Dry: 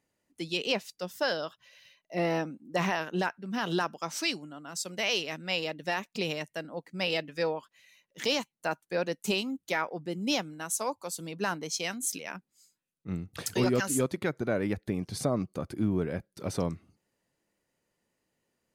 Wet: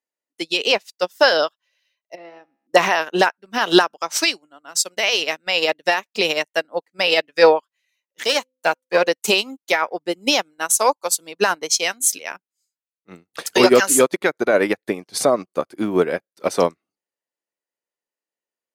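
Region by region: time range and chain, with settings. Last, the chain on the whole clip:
0:02.15–0:02.67: downward compressor 2 to 1, threshold −37 dBFS + high-frequency loss of the air 150 metres + tuned comb filter 68 Hz, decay 1.1 s
0:08.24–0:09.08: gain on one half-wave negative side −7 dB + hum removal 257.2 Hz, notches 2
whole clip: high-pass filter 430 Hz 12 dB per octave; boost into a limiter +24 dB; expander for the loud parts 2.5 to 1, over −31 dBFS

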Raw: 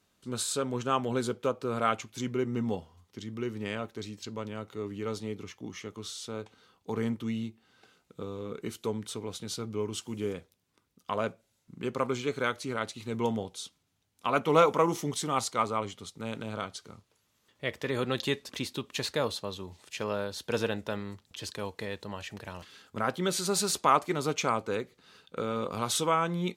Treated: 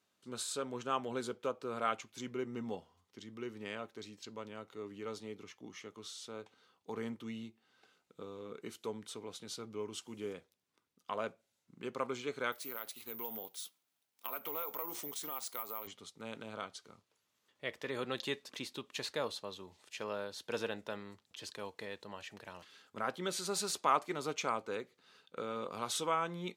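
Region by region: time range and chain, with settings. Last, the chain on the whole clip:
0:12.52–0:15.87: high-pass filter 420 Hz 6 dB per octave + downward compressor 4 to 1, threshold −34 dBFS + bad sample-rate conversion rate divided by 3×, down none, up zero stuff
whole clip: high-pass filter 310 Hz 6 dB per octave; high-shelf EQ 8,200 Hz −4 dB; level −6 dB

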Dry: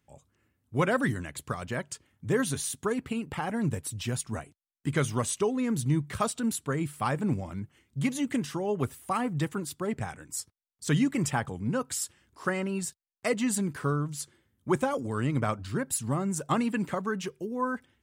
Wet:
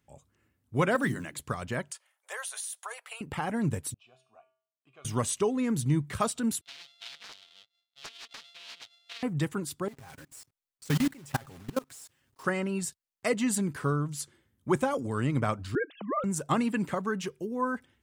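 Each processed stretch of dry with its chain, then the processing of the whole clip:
0:00.95–0:01.40: mains-hum notches 50/100/150/200/250/300/350 Hz + floating-point word with a short mantissa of 4 bits + high-pass filter 120 Hz 24 dB per octave
0:01.91–0:03.21: Butterworth high-pass 580 Hz 48 dB per octave + parametric band 9,800 Hz +8.5 dB 0.23 octaves + downward compressor 10 to 1, threshold −33 dBFS
0:03.94–0:05.05: formant filter a + parametric band 3,500 Hz +6 dB 1.8 octaves + tuned comb filter 130 Hz, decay 0.5 s, harmonics odd, mix 80%
0:06.61–0:09.23: samples sorted by size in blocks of 64 samples + resonant band-pass 3,700 Hz, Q 5.8 + highs frequency-modulated by the lows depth 0.78 ms
0:09.88–0:12.44: one scale factor per block 3 bits + comb filter 7.5 ms, depth 48% + output level in coarse steps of 24 dB
0:15.75–0:16.24: three sine waves on the formant tracks + high-pass filter 310 Hz + notch filter 910 Hz, Q 9.5
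whole clip: no processing

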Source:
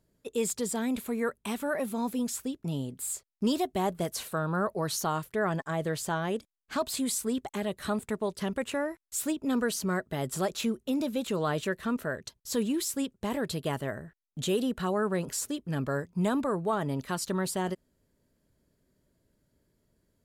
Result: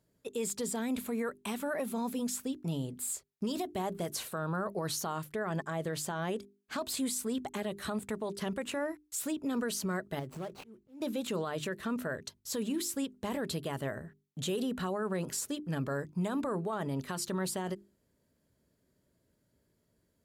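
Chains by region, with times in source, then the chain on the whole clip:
0:10.19–0:11.02: running median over 25 samples + downward compressor 5 to 1, threshold −35 dBFS + volume swells 282 ms
whole clip: high-pass filter 52 Hz; mains-hum notches 50/100/150/200/250/300/350/400 Hz; brickwall limiter −25 dBFS; level −1 dB

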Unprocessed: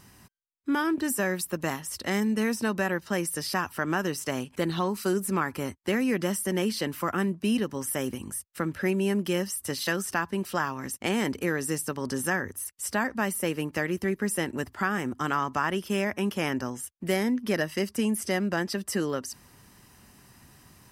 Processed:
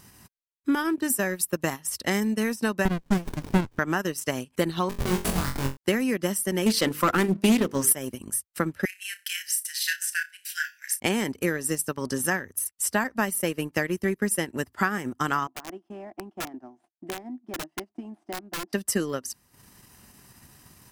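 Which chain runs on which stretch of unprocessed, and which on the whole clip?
0:02.85–0:03.79: low-pass filter 11,000 Hz + high-shelf EQ 6,100 Hz +5.5 dB + windowed peak hold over 65 samples
0:04.89–0:05.77: meter weighting curve D + comparator with hysteresis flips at −23.5 dBFS + flutter between parallel walls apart 3.8 metres, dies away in 0.44 s
0:06.66–0:07.93: mains-hum notches 50/100/150/200/250/300/350/400/450/500 Hz + leveller curve on the samples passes 2 + highs frequency-modulated by the lows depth 0.19 ms
0:08.85–0:11.00: linear-phase brick-wall high-pass 1,400 Hz + flutter between parallel walls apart 5.4 metres, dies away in 0.34 s
0:15.47–0:18.73: variable-slope delta modulation 64 kbit/s + pair of resonant band-passes 480 Hz, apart 1.1 octaves + wrap-around overflow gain 30.5 dB
whole clip: high-shelf EQ 5,900 Hz +5.5 dB; transient designer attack +5 dB, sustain −11 dB

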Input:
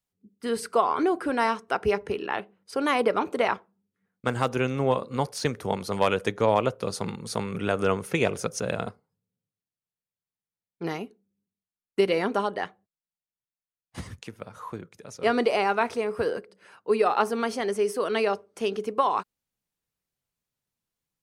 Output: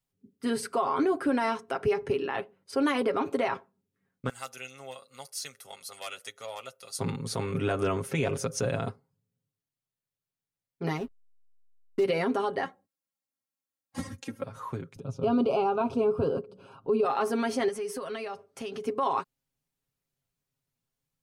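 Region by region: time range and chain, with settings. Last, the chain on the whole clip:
0:04.29–0:06.99: first difference + comb filter 1.5 ms, depth 42%
0:10.97–0:12.04: running median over 15 samples + slack as between gear wheels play −41 dBFS
0:12.63–0:14.44: high-pass filter 95 Hz + parametric band 3,000 Hz −5 dB 1.2 octaves + comb filter 3.7 ms, depth 97%
0:14.96–0:17.05: bass and treble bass +9 dB, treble −14 dB + upward compression, threshold −41 dBFS + Butterworth band-reject 1,900 Hz, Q 1.5
0:17.68–0:18.86: parametric band 360 Hz −9.5 dB 0.56 octaves + downward compressor 5 to 1, threshold −33 dBFS
whole clip: low-shelf EQ 370 Hz +5.5 dB; comb filter 7.4 ms, depth 70%; brickwall limiter −15.5 dBFS; level −2.5 dB

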